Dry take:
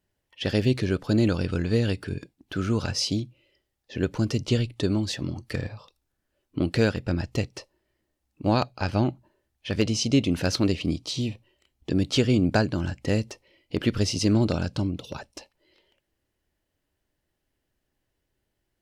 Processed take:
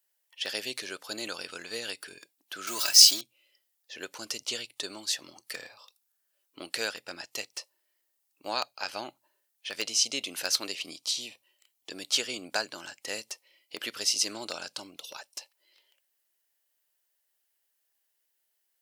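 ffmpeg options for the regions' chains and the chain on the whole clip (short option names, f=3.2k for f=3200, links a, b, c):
-filter_complex "[0:a]asettb=1/sr,asplit=3[a][b][c];[a]atrim=end=2.674[d];[b]atrim=start=2.67:end=3.21,asetpts=PTS-STARTPTS,afade=t=in:d=0.004:c=qsin,afade=t=out:st=0.536:d=0.004:c=qsin,aeval=exprs='val(0)+0.5*0.0119*sgn(val(0))':c=same,highshelf=f=2.5k:g=8,aecho=1:1:3.1:0.73,atrim=end_sample=23814[e];[c]atrim=start=3.206[f];[d][e]acrossfade=d=0.004:c1=hsin:c2=qsin[g];[g][f]acrossfade=d=0.004:c1=qsin:c2=hsin,highpass=720,aemphasis=mode=production:type=75kf,volume=-5dB"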